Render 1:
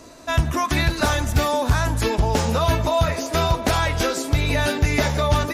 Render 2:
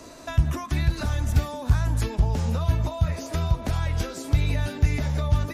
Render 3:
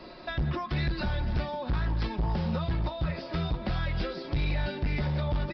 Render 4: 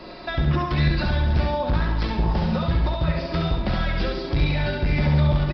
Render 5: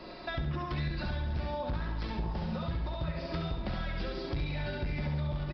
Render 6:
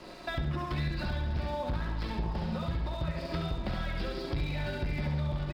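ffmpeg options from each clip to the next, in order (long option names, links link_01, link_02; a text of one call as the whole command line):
ffmpeg -i in.wav -filter_complex "[0:a]acrossover=split=180[link_01][link_02];[link_02]acompressor=threshold=-32dB:ratio=10[link_03];[link_01][link_03]amix=inputs=2:normalize=0" out.wav
ffmpeg -i in.wav -af "aecho=1:1:5.5:0.62,aresample=11025,volume=22dB,asoftclip=hard,volume=-22dB,aresample=44100,volume=-2dB" out.wav
ffmpeg -i in.wav -af "aecho=1:1:68|136|204|272|340|408:0.631|0.29|0.134|0.0614|0.0283|0.013,volume=6dB" out.wav
ffmpeg -i in.wav -af "acompressor=threshold=-26dB:ratio=3,volume=-6.5dB" out.wav
ffmpeg -i in.wav -af "aeval=exprs='sgn(val(0))*max(abs(val(0))-0.00211,0)':channel_layout=same,volume=2dB" out.wav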